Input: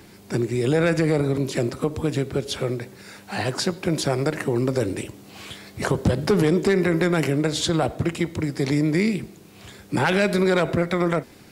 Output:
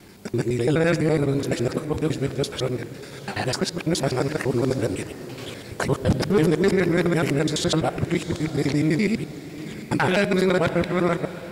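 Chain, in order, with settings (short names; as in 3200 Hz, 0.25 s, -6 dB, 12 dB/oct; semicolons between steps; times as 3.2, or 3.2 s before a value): local time reversal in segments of 84 ms; diffused feedback echo 0.724 s, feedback 41%, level -14.5 dB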